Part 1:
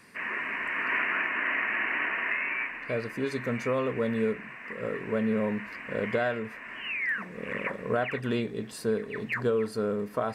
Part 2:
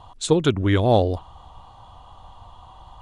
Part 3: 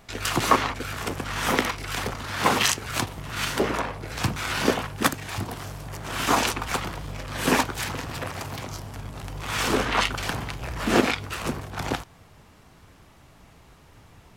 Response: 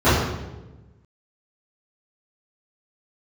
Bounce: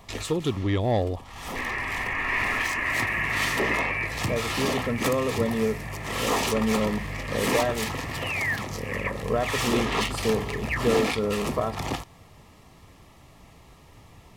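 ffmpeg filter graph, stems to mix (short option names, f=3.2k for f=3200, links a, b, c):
-filter_complex "[0:a]adelay=1400,volume=2.5dB[a];[1:a]dynaudnorm=f=110:g=7:m=15dB,asoftclip=type=tanh:threshold=-6.5dB,volume=-9dB,asplit=2[b][c];[2:a]asoftclip=type=tanh:threshold=-22dB,volume=1dB[d];[c]apad=whole_len=633631[e];[d][e]sidechaincompress=threshold=-45dB:ratio=4:attack=21:release=517[f];[a][b][f]amix=inputs=3:normalize=0,asuperstop=centerf=1500:order=4:qfactor=5.4"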